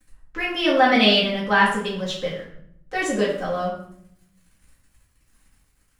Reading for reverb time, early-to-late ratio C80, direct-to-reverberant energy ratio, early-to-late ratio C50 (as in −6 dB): 0.70 s, 8.0 dB, −8.5 dB, 4.0 dB